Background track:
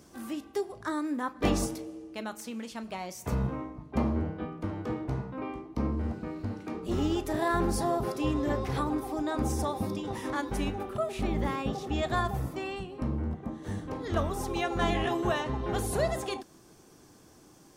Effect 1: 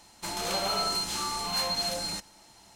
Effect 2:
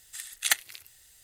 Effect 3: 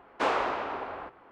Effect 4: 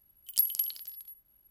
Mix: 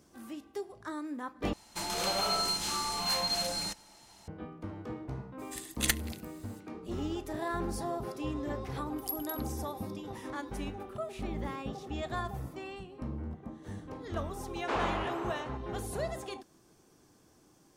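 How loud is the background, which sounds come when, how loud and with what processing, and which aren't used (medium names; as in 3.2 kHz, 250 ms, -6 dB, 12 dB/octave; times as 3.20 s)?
background track -7 dB
1.53 s: replace with 1 -1.5 dB
5.38 s: add 2 -1.5 dB, fades 0.02 s + valve stage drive 13 dB, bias 0.5
8.70 s: add 4 -11 dB
14.48 s: add 3 -6 dB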